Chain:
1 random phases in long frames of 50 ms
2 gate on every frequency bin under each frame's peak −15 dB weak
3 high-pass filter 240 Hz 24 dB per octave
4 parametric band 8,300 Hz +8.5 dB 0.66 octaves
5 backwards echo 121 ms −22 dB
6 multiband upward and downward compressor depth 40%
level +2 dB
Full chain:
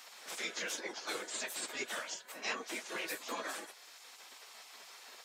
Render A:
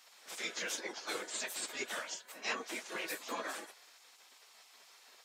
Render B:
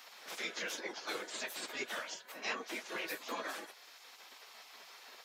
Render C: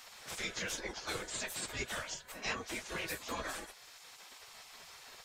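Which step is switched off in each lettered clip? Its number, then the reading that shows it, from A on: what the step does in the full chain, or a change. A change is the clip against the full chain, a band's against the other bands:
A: 6, change in momentary loudness spread +7 LU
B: 4, 8 kHz band −5.0 dB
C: 3, 125 Hz band +16.0 dB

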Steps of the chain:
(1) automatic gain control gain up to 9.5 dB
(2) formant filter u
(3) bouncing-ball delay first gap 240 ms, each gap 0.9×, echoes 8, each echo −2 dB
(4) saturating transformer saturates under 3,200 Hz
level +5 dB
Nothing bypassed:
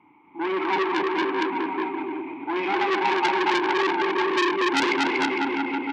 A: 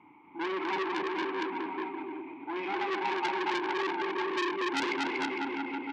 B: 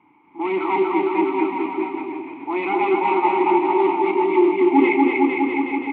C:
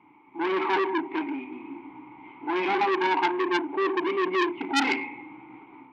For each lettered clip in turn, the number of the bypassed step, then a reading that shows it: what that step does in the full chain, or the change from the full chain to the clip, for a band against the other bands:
1, change in integrated loudness −8.5 LU
4, change in crest factor −4.5 dB
3, change in momentary loudness spread +11 LU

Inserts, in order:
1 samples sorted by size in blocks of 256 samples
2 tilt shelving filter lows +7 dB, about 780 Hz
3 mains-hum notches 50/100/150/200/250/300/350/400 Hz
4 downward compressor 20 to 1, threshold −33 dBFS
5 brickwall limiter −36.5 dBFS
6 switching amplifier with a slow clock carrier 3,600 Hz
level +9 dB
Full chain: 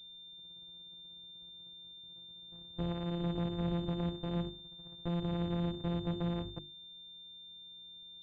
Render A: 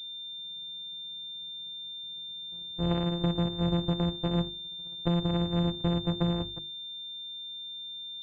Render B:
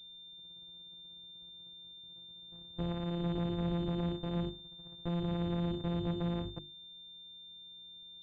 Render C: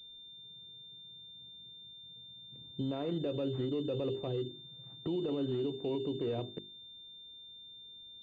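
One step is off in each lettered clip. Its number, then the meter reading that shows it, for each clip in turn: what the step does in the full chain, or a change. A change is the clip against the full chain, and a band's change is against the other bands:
5, average gain reduction 4.0 dB
4, average gain reduction 7.0 dB
1, 500 Hz band +10.5 dB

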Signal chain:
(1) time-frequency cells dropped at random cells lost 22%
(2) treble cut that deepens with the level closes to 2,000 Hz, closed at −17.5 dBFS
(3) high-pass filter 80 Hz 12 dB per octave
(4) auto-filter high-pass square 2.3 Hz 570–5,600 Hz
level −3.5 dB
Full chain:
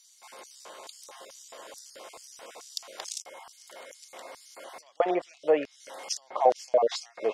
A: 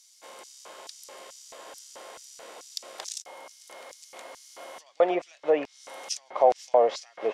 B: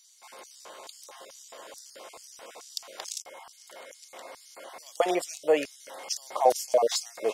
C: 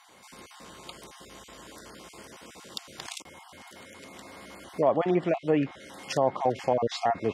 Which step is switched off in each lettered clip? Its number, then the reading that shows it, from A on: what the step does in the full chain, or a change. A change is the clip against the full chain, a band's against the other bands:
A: 1, 500 Hz band +1.5 dB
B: 2, 8 kHz band +4.0 dB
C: 4, 250 Hz band +8.5 dB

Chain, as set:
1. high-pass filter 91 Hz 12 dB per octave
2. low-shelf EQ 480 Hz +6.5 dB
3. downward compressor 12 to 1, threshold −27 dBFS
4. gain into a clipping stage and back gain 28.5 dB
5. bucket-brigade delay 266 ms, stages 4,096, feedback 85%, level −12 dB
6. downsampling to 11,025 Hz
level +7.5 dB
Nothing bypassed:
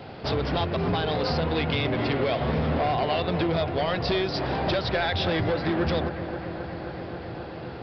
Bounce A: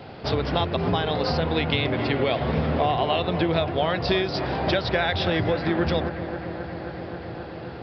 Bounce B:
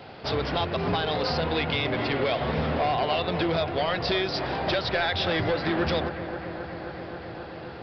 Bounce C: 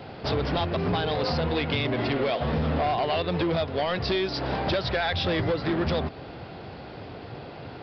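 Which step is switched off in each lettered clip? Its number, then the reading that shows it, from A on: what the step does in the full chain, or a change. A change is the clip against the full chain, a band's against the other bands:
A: 4, distortion level −11 dB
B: 2, 125 Hz band −4.0 dB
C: 5, change in momentary loudness spread +5 LU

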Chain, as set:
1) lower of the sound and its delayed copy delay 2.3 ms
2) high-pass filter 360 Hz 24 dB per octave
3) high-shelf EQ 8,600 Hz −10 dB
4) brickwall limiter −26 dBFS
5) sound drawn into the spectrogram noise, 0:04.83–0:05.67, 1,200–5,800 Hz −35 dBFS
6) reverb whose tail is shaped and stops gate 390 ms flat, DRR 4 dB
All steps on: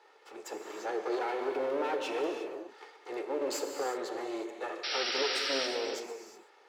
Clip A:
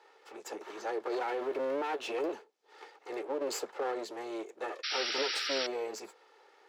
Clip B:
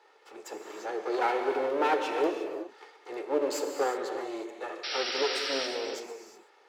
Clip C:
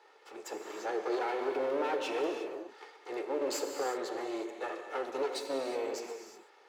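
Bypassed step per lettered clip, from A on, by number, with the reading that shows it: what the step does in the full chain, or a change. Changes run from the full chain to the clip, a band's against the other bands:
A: 6, change in integrated loudness −1.0 LU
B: 4, change in crest factor +2.0 dB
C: 5, 4 kHz band −9.5 dB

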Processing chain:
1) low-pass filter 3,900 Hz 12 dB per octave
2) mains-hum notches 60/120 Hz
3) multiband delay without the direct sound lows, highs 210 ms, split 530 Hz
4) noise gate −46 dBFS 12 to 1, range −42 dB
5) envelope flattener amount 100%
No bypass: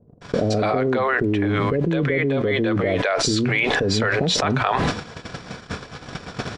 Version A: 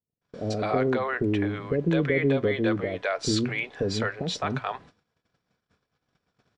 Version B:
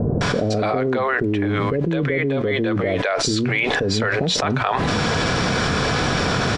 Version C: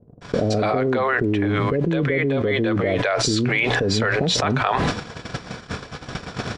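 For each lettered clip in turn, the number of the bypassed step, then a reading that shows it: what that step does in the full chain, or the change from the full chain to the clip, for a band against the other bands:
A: 5, change in momentary loudness spread −7 LU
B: 4, change in momentary loudness spread −13 LU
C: 2, change in momentary loudness spread −1 LU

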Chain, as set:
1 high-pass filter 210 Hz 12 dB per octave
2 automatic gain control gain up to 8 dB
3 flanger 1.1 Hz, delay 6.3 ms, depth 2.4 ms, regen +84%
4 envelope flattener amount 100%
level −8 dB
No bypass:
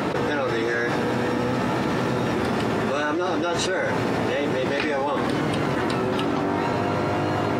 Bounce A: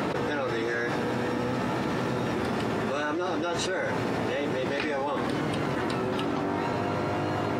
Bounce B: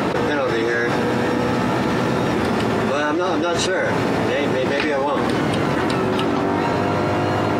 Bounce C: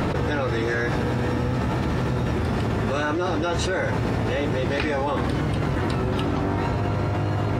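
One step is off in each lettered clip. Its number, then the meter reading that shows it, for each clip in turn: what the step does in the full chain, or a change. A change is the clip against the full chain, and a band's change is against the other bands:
2, change in integrated loudness −5.0 LU
3, change in integrated loudness +4.0 LU
1, 125 Hz band +8.5 dB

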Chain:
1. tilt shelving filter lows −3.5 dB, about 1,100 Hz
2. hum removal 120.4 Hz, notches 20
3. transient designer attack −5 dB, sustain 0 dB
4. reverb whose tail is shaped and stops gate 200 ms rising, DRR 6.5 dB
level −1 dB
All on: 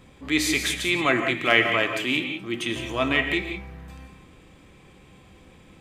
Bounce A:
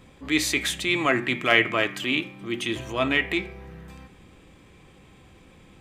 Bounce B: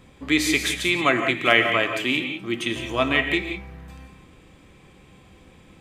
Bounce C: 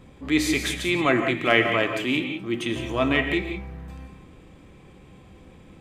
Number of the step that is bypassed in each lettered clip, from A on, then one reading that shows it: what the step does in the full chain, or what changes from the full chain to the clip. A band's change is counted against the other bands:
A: 4, change in momentary loudness spread +1 LU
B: 3, change in integrated loudness +1.5 LU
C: 1, 8 kHz band −4.5 dB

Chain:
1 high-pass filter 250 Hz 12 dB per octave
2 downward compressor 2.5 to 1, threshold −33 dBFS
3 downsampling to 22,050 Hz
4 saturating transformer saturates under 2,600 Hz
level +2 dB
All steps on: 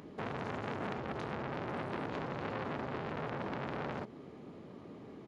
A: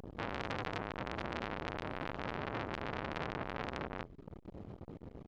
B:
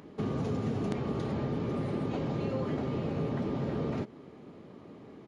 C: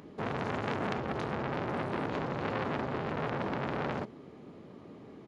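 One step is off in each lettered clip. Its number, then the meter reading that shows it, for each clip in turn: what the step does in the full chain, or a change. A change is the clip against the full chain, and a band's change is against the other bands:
1, 4 kHz band +5.5 dB
4, change in crest factor −3.0 dB
2, average gain reduction 3.5 dB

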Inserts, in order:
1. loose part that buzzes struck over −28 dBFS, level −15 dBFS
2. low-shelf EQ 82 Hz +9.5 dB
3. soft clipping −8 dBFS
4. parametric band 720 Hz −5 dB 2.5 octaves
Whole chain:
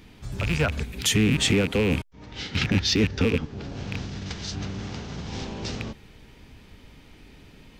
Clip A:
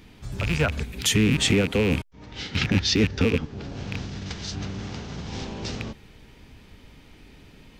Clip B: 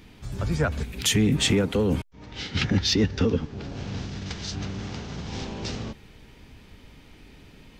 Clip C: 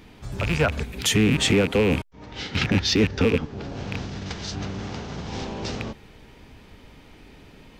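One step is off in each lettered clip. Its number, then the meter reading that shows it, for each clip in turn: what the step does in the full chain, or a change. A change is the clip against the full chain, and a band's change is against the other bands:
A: 3, distortion level −25 dB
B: 1, 2 kHz band −3.5 dB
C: 4, change in integrated loudness +1.5 LU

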